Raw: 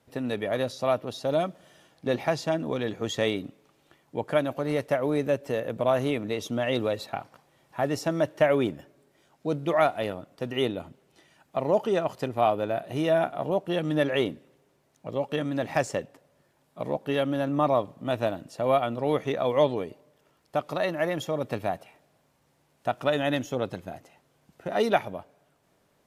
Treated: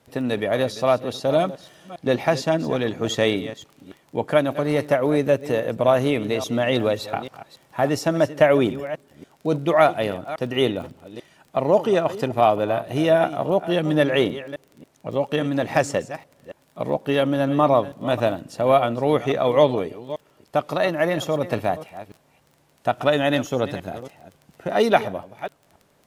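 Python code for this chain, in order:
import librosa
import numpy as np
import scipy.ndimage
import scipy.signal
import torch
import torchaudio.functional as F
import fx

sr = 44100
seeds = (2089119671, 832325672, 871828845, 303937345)

y = fx.reverse_delay(x, sr, ms=280, wet_db=-14)
y = fx.dmg_crackle(y, sr, seeds[0], per_s=17.0, level_db=-42.0)
y = y * librosa.db_to_amplitude(6.0)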